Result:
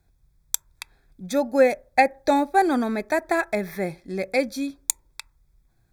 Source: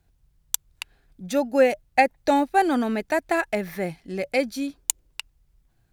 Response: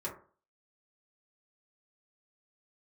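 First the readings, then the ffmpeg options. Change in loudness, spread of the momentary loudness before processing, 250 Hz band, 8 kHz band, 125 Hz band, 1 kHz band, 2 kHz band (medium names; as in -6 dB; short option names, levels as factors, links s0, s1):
+0.5 dB, 19 LU, 0.0 dB, +0.5 dB, +0.5 dB, +0.5 dB, 0.0 dB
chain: -filter_complex "[0:a]asuperstop=centerf=2900:order=12:qfactor=4.8,asplit=2[s0][s1];[1:a]atrim=start_sample=2205[s2];[s1][s2]afir=irnorm=-1:irlink=0,volume=0.0891[s3];[s0][s3]amix=inputs=2:normalize=0"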